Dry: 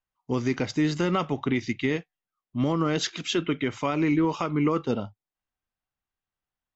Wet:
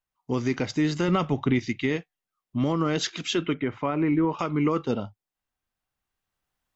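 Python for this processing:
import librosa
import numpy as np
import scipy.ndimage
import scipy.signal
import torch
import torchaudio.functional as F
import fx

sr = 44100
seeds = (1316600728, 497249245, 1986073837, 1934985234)

y = fx.recorder_agc(x, sr, target_db=-19.5, rise_db_per_s=5.4, max_gain_db=30)
y = fx.low_shelf(y, sr, hz=180.0, db=8.0, at=(1.08, 1.59))
y = fx.lowpass(y, sr, hz=1900.0, slope=12, at=(3.54, 4.39))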